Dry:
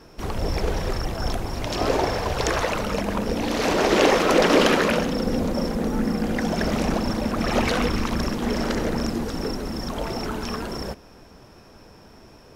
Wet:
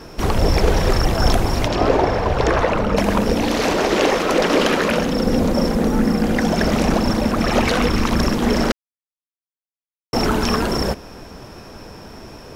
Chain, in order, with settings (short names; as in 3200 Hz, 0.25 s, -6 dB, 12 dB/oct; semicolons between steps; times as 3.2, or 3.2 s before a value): 1.66–2.96 LPF 2400 Hz -> 1200 Hz 6 dB/oct; vocal rider within 5 dB 0.5 s; 8.72–10.13 mute; gain +5.5 dB